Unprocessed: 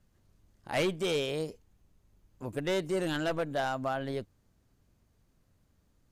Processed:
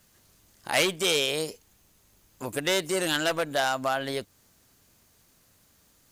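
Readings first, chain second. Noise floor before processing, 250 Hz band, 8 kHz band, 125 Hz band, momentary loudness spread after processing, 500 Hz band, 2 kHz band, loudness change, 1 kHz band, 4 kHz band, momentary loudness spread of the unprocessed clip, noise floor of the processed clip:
-70 dBFS, +1.0 dB, +15.0 dB, -1.5 dB, 12 LU, +3.0 dB, +9.0 dB, +6.0 dB, +5.5 dB, +11.5 dB, 10 LU, -63 dBFS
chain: tilt +3 dB/oct; in parallel at 0 dB: compressor, threshold -43 dBFS, peak gain reduction 17.5 dB; on the sum: gain +4.5 dB

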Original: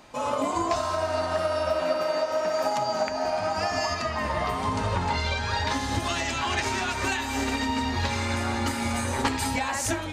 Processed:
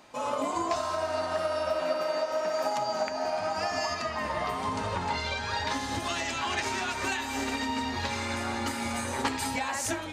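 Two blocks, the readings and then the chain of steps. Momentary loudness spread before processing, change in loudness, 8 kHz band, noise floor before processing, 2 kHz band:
2 LU, -3.5 dB, -3.0 dB, -31 dBFS, -3.0 dB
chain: low shelf 100 Hz -11.5 dB; gain -3 dB

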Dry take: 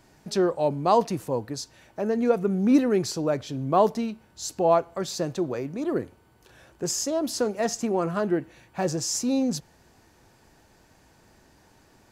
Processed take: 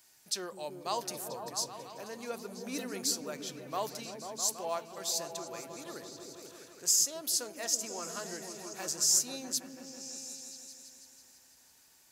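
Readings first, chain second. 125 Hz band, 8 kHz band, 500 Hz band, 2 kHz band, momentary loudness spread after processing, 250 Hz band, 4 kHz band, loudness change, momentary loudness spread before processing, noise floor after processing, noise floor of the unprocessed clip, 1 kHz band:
-20.0 dB, +3.5 dB, -16.0 dB, -7.0 dB, 18 LU, -19.5 dB, +0.5 dB, -8.0 dB, 11 LU, -63 dBFS, -59 dBFS, -12.5 dB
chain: pre-emphasis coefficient 0.97; repeats that get brighter 0.164 s, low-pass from 200 Hz, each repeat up 1 oct, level 0 dB; gain +4 dB

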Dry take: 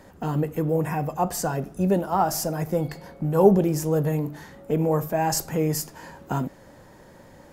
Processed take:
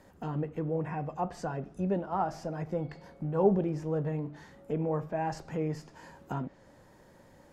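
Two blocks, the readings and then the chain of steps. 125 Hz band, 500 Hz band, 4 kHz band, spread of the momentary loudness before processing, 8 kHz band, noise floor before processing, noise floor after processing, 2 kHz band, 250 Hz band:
-8.5 dB, -8.5 dB, under -15 dB, 12 LU, under -20 dB, -50 dBFS, -58 dBFS, -9.0 dB, -8.5 dB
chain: treble ducked by the level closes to 2800 Hz, closed at -22.5 dBFS; gain -8.5 dB

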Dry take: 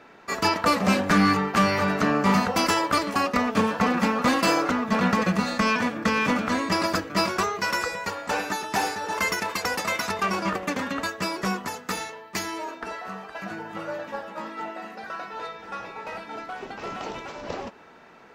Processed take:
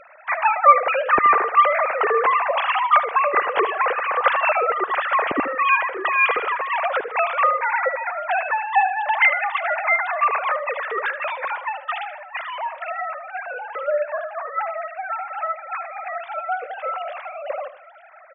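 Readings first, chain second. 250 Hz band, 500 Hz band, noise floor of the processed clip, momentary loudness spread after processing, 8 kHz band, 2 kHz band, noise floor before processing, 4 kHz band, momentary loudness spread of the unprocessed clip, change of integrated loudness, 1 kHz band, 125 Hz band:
-14.5 dB, +4.0 dB, -42 dBFS, 13 LU, under -40 dB, +6.0 dB, -50 dBFS, -5.5 dB, 14 LU, +4.0 dB, +7.5 dB, under -20 dB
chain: sine-wave speech; feedback echo 76 ms, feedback 31%, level -13.5 dB; gain +4 dB

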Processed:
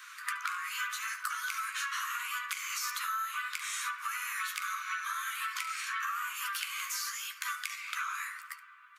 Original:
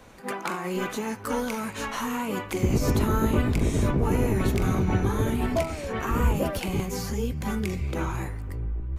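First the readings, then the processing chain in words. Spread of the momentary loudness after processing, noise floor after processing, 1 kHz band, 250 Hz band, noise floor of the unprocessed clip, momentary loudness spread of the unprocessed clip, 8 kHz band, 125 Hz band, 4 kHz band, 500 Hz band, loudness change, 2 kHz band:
3 LU, -52 dBFS, -4.0 dB, under -40 dB, -38 dBFS, 8 LU, +1.0 dB, under -40 dB, +1.0 dB, under -40 dB, -8.0 dB, +2.0 dB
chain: steep high-pass 1100 Hz 96 dB/oct; bell 1400 Hz +4 dB 0.51 oct; on a send: early reflections 12 ms -9.5 dB, 71 ms -16 dB; on the sum: compressor 6:1, threshold -39 dBFS, peak gain reduction 13 dB; gain +6 dB

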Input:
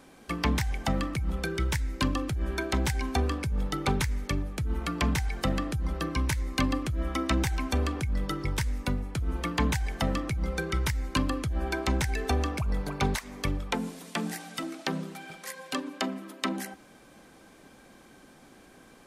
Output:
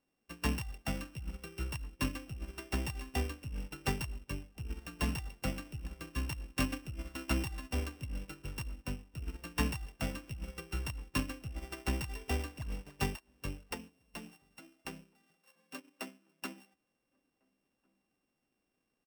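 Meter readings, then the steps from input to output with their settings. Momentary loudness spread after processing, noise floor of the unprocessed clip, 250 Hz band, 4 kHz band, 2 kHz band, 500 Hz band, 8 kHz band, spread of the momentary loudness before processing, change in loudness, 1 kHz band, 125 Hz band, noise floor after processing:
12 LU, -55 dBFS, -10.0 dB, -9.0 dB, -8.5 dB, -11.0 dB, -8.5 dB, 6 LU, -9.0 dB, -12.0 dB, -9.5 dB, -83 dBFS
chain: sample sorter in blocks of 16 samples; outdoor echo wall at 240 m, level -17 dB; upward expander 2.5:1, over -39 dBFS; gain -4 dB

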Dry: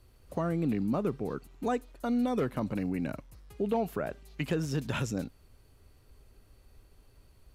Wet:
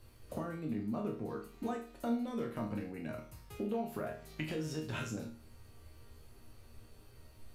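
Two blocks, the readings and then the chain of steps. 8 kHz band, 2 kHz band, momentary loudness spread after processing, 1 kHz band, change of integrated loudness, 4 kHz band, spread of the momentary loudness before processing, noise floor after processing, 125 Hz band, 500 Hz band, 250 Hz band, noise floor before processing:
-5.0 dB, -5.5 dB, 22 LU, -7.0 dB, -7.0 dB, -5.0 dB, 8 LU, -58 dBFS, -8.0 dB, -7.0 dB, -6.5 dB, -61 dBFS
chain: compressor, threshold -39 dBFS, peak gain reduction 13.5 dB; resonator bank D#2 sus4, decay 0.43 s; gain +17 dB

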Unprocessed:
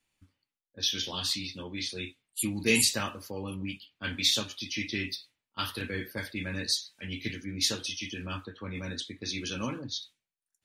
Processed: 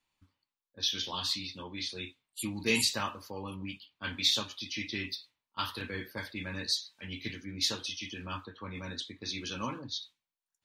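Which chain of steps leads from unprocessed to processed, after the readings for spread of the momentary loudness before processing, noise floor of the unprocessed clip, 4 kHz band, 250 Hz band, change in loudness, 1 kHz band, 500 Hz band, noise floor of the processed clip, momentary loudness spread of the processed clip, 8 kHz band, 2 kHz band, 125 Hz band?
13 LU, under -85 dBFS, -1.5 dB, -4.5 dB, -3.0 dB, +1.5 dB, -3.5 dB, under -85 dBFS, 14 LU, -6.0 dB, -3.0 dB, -4.5 dB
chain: fifteen-band EQ 1000 Hz +9 dB, 4000 Hz +4 dB, 10000 Hz -5 dB; gain -4.5 dB

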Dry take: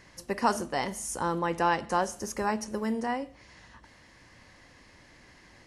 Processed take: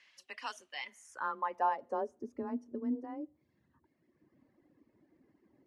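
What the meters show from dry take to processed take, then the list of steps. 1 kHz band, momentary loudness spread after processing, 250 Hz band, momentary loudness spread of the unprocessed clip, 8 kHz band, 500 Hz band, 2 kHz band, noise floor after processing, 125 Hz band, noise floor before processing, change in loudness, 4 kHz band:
-7.5 dB, 13 LU, -7.0 dB, 6 LU, under -20 dB, -9.5 dB, -10.0 dB, -77 dBFS, under -20 dB, -57 dBFS, -8.0 dB, n/a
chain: frequency shift +23 Hz; reverb removal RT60 1.6 s; band-pass sweep 2900 Hz -> 290 Hz, 0.74–2.29

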